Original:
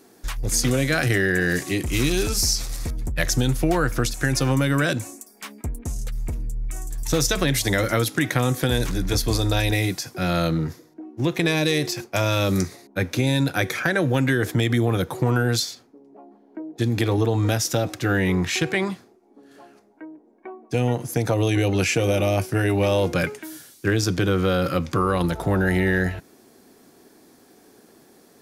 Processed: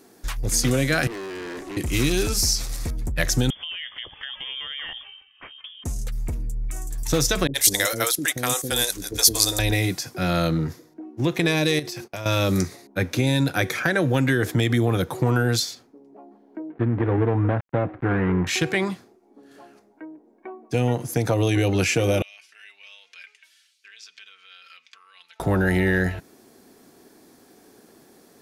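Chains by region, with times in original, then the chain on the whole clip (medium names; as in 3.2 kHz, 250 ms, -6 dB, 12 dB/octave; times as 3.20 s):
1.07–1.77 s: high-pass 290 Hz 24 dB/octave + tilt EQ -4 dB/octave + valve stage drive 32 dB, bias 0.5
3.50–5.84 s: high-pass 140 Hz + frequency inversion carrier 3.4 kHz + compression 2:1, threshold -40 dBFS
7.47–9.59 s: gate -23 dBFS, range -15 dB + tone controls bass -12 dB, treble +14 dB + bands offset in time lows, highs 70 ms, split 440 Hz
11.79–12.26 s: band-stop 7.1 kHz, Q 13 + gate -45 dBFS, range -16 dB + compression, threshold -29 dBFS
16.70–18.47 s: dead-time distortion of 0.25 ms + low-pass 1.9 kHz 24 dB/octave
22.22–25.40 s: comb 4.5 ms, depth 55% + compression 4:1, threshold -23 dBFS + ladder band-pass 3.1 kHz, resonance 40%
whole clip: none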